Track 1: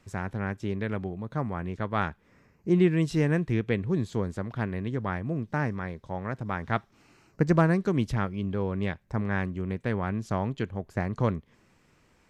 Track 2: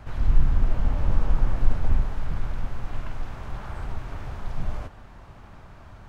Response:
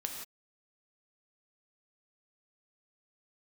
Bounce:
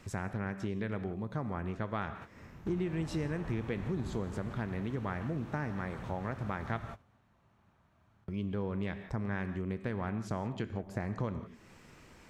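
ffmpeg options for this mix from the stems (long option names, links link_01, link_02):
-filter_complex "[0:a]acompressor=threshold=-26dB:ratio=2.5,volume=3dB,asplit=3[link_01][link_02][link_03];[link_01]atrim=end=6.83,asetpts=PTS-STARTPTS,afade=type=out:start_time=6.826:duration=0.004:curve=hsin[link_04];[link_02]atrim=start=6.83:end=8.28,asetpts=PTS-STARTPTS,volume=0[link_05];[link_03]atrim=start=8.28,asetpts=PTS-STARTPTS,afade=type=in:duration=0.004:curve=hsin[link_06];[link_04][link_05][link_06]concat=n=3:v=0:a=1,asplit=3[link_07][link_08][link_09];[link_08]volume=-4dB[link_10];[1:a]highpass=150,bandreject=frequency=4900:width=12,asubboost=boost=2.5:cutoff=210,adelay=2150,volume=0dB,asplit=2[link_11][link_12];[link_12]volume=-22.5dB[link_13];[link_09]apad=whole_len=363306[link_14];[link_11][link_14]sidechaingate=range=-33dB:threshold=-47dB:ratio=16:detection=peak[link_15];[2:a]atrim=start_sample=2205[link_16];[link_10][link_13]amix=inputs=2:normalize=0[link_17];[link_17][link_16]afir=irnorm=-1:irlink=0[link_18];[link_07][link_15][link_18]amix=inputs=3:normalize=0,acompressor=threshold=-42dB:ratio=2"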